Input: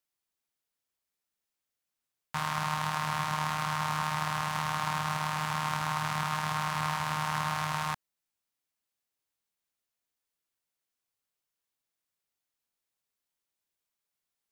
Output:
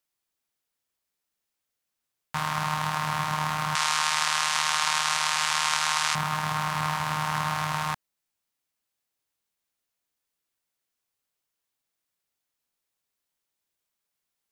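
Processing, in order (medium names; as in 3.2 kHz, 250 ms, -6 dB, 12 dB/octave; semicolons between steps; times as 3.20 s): 3.75–6.15 s: frequency weighting ITU-R 468; trim +3.5 dB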